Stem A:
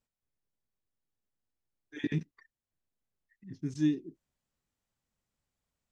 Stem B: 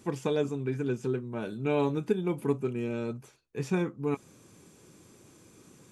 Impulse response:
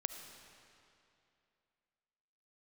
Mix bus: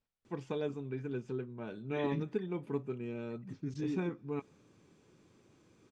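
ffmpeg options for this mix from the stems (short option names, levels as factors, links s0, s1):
-filter_complex "[0:a]alimiter=level_in=1.88:limit=0.0631:level=0:latency=1:release=15,volume=0.531,volume=0.841,asplit=2[s0][s1];[s1]volume=0.158[s2];[1:a]adelay=250,volume=0.376,asplit=2[s3][s4];[s4]volume=0.075[s5];[2:a]atrim=start_sample=2205[s6];[s2][s5]amix=inputs=2:normalize=0[s7];[s7][s6]afir=irnorm=-1:irlink=0[s8];[s0][s3][s8]amix=inputs=3:normalize=0,lowpass=4500"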